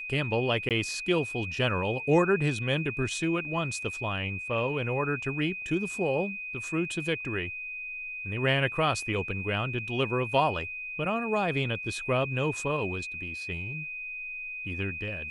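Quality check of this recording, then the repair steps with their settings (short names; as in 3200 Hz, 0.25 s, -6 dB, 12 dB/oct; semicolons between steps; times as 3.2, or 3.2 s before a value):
tone 2500 Hz -35 dBFS
0.69–0.71 gap 18 ms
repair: notch 2500 Hz, Q 30; interpolate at 0.69, 18 ms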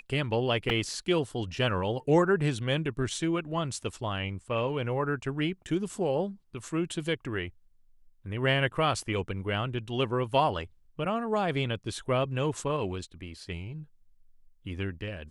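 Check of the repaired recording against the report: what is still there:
none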